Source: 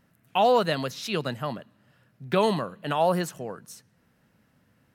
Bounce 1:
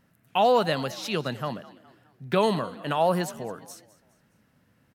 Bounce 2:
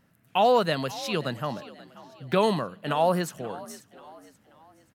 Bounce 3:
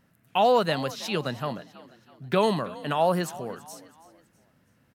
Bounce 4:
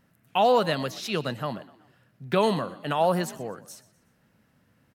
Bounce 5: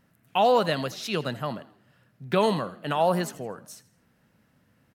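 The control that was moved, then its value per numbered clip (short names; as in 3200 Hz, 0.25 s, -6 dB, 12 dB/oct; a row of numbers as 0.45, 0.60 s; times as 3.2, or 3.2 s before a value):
frequency-shifting echo, time: 207, 533, 326, 123, 81 ms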